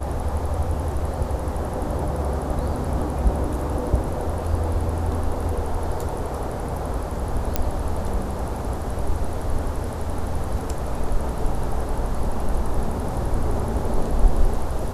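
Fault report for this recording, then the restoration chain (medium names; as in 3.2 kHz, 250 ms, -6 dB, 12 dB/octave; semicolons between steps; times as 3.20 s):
7.56 s: pop -6 dBFS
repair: de-click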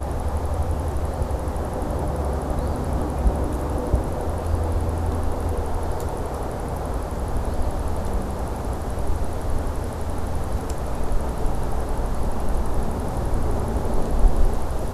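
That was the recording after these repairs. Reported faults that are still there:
7.56 s: pop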